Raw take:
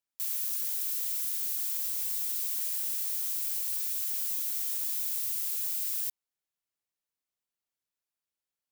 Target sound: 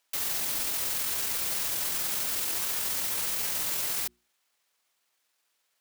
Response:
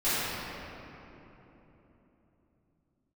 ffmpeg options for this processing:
-filter_complex "[0:a]asplit=2[s0][s1];[s1]highpass=f=720:p=1,volume=20,asoftclip=type=tanh:threshold=0.119[s2];[s0][s2]amix=inputs=2:normalize=0,lowpass=f=6400:p=1,volume=0.501,atempo=1.5,bandreject=f=60:t=h:w=6,bandreject=f=120:t=h:w=6,bandreject=f=180:t=h:w=6,bandreject=f=240:t=h:w=6,bandreject=f=300:t=h:w=6,bandreject=f=360:t=h:w=6"

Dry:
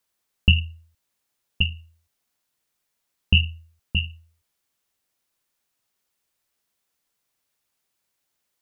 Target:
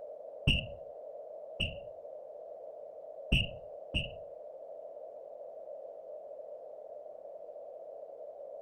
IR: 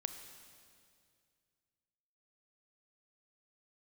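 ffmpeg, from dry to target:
-filter_complex "[0:a]aeval=exprs='val(0)+0.00708*sin(2*PI*590*n/s)':c=same,asplit=2[s0][s1];[s1]highpass=f=720:p=1,volume=7.94,asoftclip=type=tanh:threshold=0.668[s2];[s0][s2]amix=inputs=2:normalize=0,lowpass=f=1000:p=1,volume=0.501,afftfilt=real='hypot(re,im)*cos(2*PI*random(0))':imag='hypot(re,im)*sin(2*PI*random(1))':win_size=512:overlap=0.75,volume=0.75"

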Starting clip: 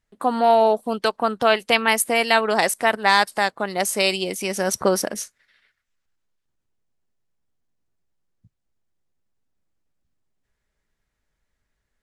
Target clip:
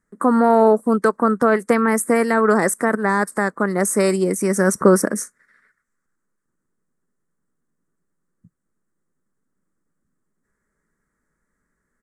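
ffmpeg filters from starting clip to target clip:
-filter_complex "[0:a]firequalizer=gain_entry='entry(110,0);entry(170,13);entry(470,9);entry(730,-1);entry(1200,12);entry(1900,7);entry(2800,-18);entry(5800,0);entry(8300,10);entry(14000,-2)':delay=0.05:min_phase=1,acrossover=split=700[s0][s1];[s1]alimiter=limit=0.282:level=0:latency=1:release=25[s2];[s0][s2]amix=inputs=2:normalize=0,volume=0.794"

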